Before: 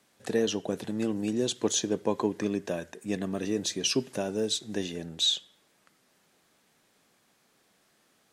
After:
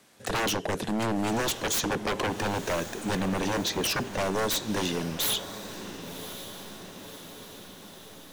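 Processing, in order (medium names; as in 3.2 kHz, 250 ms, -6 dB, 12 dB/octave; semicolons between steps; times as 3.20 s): 3.62–4.18 s: low-pass 4.3 kHz 12 dB/octave; wavefolder -29.5 dBFS; echo that smears into a reverb 1083 ms, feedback 60%, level -12 dB; trim +7.5 dB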